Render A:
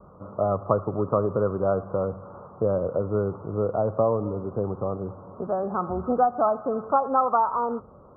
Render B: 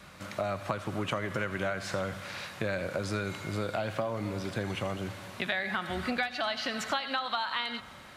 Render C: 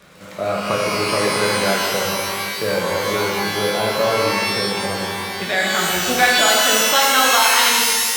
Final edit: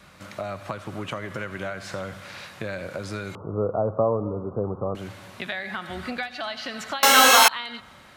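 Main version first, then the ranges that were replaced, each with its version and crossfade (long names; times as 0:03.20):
B
0:03.35–0:04.95: punch in from A
0:07.03–0:07.48: punch in from C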